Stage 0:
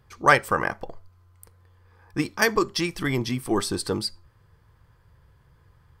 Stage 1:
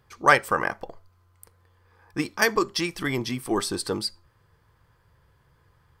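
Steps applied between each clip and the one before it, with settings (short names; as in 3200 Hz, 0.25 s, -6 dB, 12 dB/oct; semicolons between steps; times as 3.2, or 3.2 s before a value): low shelf 170 Hz -7 dB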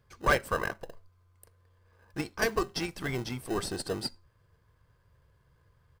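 comb 1.9 ms, depth 35%; in parallel at -5 dB: sample-and-hold 39×; on the sum: soft clip -6.5 dBFS, distortion -16 dB; gain -8 dB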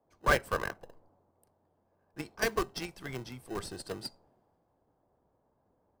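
band noise 120–870 Hz -57 dBFS; in parallel at -8.5 dB: bit-crush 4-bit; on the sum: three-band expander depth 40%; gain -7 dB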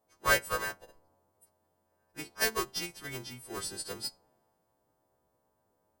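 frequency quantiser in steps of 2 st; gain -2 dB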